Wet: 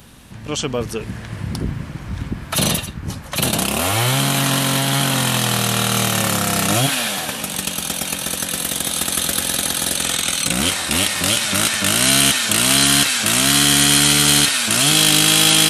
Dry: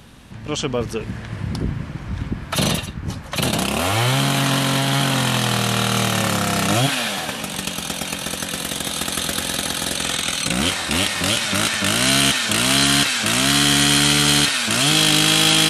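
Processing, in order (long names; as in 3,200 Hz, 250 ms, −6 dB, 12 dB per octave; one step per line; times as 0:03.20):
high-shelf EQ 9,200 Hz +12 dB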